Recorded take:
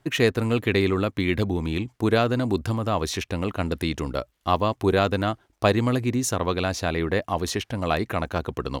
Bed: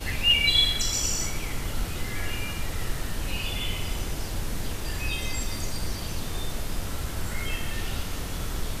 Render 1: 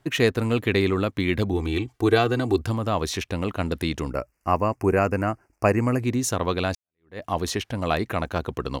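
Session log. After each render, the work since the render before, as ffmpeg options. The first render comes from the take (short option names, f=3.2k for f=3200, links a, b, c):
-filter_complex "[0:a]asettb=1/sr,asplit=3[a][b][c];[a]atrim=end=1.534[d];[b]atrim=start=1.53:end=2.62,asetpts=PTS-STARTPTS,afade=t=in:d=0.004:c=qsin,afade=t=out:st=1.086:d=0.004:c=qsin,aecho=1:1:2.6:0.65,atrim=end_sample=48069[e];[c]atrim=start=2.616[f];[d][e]acrossfade=d=0.004:c1=hsin:c2=qsin[g];[g][f]acrossfade=d=0.004:c1=qsin:c2=hsin,asettb=1/sr,asplit=3[h][i][j];[h]atrim=end=4.104[k];[i]atrim=start=4.1:end=6,asetpts=PTS-STARTPTS,afade=t=in:d=0.004:c=qsin,afade=t=out:st=1.896:d=0.004:c=qsin,asuperstop=centerf=3600:order=8:qfactor=1.8[l];[j]atrim=start=5.996[m];[k][l]acrossfade=d=0.004:c1=hsin:c2=qsin[n];[n][m]acrossfade=d=0.004:c1=qsin:c2=hsin,asplit=2[o][p];[o]atrim=end=6.75,asetpts=PTS-STARTPTS,afade=t=out:st=6.746:d=0.004:c=hsin[q];[p]atrim=start=6.75,asetpts=PTS-STARTPTS,afade=t=in:d=0.48:c=exp[r];[q][r]concat=n=2:v=0:a=1"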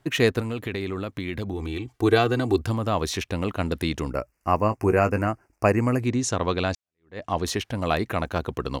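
-filter_complex "[0:a]asettb=1/sr,asplit=3[a][b][c];[a]atrim=end=0.404[d];[b]atrim=start=0.4:end=1.88,asetpts=PTS-STARTPTS,afade=t=in:d=0.004:c=qsin,afade=t=out:st=1.476:d=0.004:c=qsin,acompressor=threshold=-28dB:ratio=3:attack=3.2:release=140:knee=1:detection=peak[e];[c]atrim=start=1.876[f];[d][e]acrossfade=d=0.004:c1=hsin:c2=qsin[g];[g][f]acrossfade=d=0.004:c1=qsin:c2=hsin,asettb=1/sr,asplit=3[h][i][j];[h]atrim=end=4.564[k];[i]atrim=start=4.56:end=5.27,asetpts=PTS-STARTPTS,afade=t=in:d=0.004:c=qsin,afade=t=out:st=0.706:d=0.004:c=qsin,asplit=2[l][m];[m]adelay=19,volume=-10dB[n];[l][n]amix=inputs=2:normalize=0,atrim=end_sample=31311[o];[j]atrim=start=5.266[p];[k][o]acrossfade=d=0.004:c1=hsin:c2=qsin[q];[q][p]acrossfade=d=0.004:c1=qsin:c2=hsin,asettb=1/sr,asplit=3[r][s][t];[r]atrim=end=6.084[u];[s]atrim=start=6.08:end=7.45,asetpts=PTS-STARTPTS,afade=t=in:d=0.004:c=qsin,afade=t=out:st=1.366:d=0.004:c=qsin,lowpass=f=8.4k:w=0.5412,lowpass=f=8.4k:w=1.3066[v];[t]atrim=start=7.446[w];[u][v]acrossfade=d=0.004:c1=hsin:c2=qsin[x];[x][w]acrossfade=d=0.004:c1=qsin:c2=hsin"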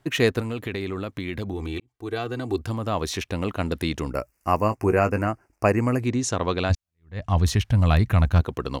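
-filter_complex "[0:a]asettb=1/sr,asplit=3[a][b][c];[a]atrim=end=4.154[d];[b]atrim=start=4.15:end=4.75,asetpts=PTS-STARTPTS,afade=t=in:d=0.004:c=qsin,afade=t=out:st=0.596:d=0.004:c=qsin,highshelf=f=5.7k:g=9[e];[c]atrim=start=4.746[f];[d][e]acrossfade=d=0.004:c1=hsin:c2=qsin[g];[g][f]acrossfade=d=0.004:c1=qsin:c2=hsin,asplit=3[h][i][j];[h]afade=t=out:st=6.69:d=0.02[k];[i]asubboost=boost=11:cutoff=120,afade=t=in:st=6.69:d=0.02,afade=t=out:st=8.4:d=0.02[l];[j]afade=t=in:st=8.4:d=0.02[m];[k][l][m]amix=inputs=3:normalize=0,asplit=2[n][o];[n]atrim=end=1.8,asetpts=PTS-STARTPTS,afade=t=out:st=1.796:d=0.004:c=hsin[p];[o]atrim=start=1.8,asetpts=PTS-STARTPTS,afade=t=in:d=1.76:c=qsin[q];[p][q]concat=n=2:v=0:a=1"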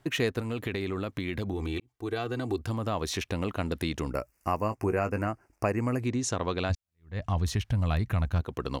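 -af "acompressor=threshold=-30dB:ratio=2"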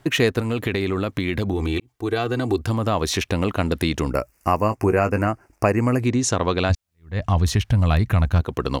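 -af "volume=9dB"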